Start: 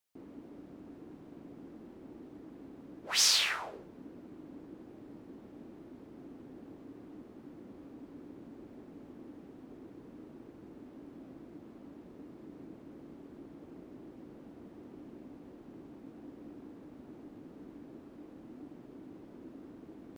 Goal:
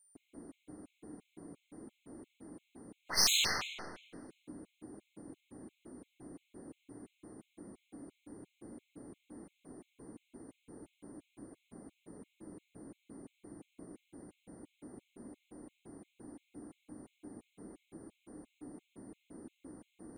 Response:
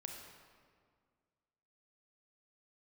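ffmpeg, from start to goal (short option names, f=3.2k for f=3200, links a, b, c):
-filter_complex "[0:a]aeval=exprs='0.282*(cos(1*acos(clip(val(0)/0.282,-1,1)))-cos(1*PI/2))+0.0112*(cos(7*acos(clip(val(0)/0.282,-1,1)))-cos(7*PI/2))+0.0251*(cos(8*acos(clip(val(0)/0.282,-1,1)))-cos(8*PI/2))':c=same,aeval=exprs='val(0)+0.000562*sin(2*PI*9100*n/s)':c=same[a];[1:a]atrim=start_sample=2205,asetrate=57330,aresample=44100[b];[a][b]afir=irnorm=-1:irlink=0,afftfilt=real='re*gt(sin(2*PI*2.9*pts/sr)*(1-2*mod(floor(b*sr/1024/2100),2)),0)':imag='im*gt(sin(2*PI*2.9*pts/sr)*(1-2*mod(floor(b*sr/1024/2100),2)),0)':win_size=1024:overlap=0.75,volume=7.5dB"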